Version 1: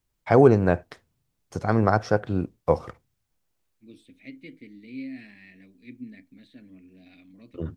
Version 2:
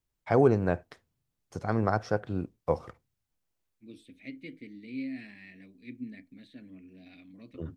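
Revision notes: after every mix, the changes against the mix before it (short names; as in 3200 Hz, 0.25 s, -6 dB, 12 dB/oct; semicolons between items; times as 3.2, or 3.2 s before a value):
first voice -6.5 dB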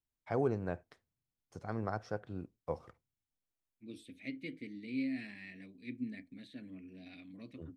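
first voice -10.5 dB; second voice: add high shelf 5300 Hz +4.5 dB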